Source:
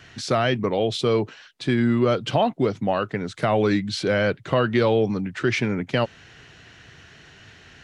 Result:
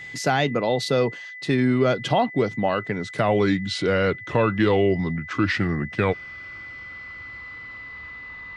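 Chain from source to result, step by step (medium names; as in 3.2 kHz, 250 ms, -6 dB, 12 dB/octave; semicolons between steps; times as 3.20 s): gliding tape speed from 117% -> 66%; whistle 2 kHz -36 dBFS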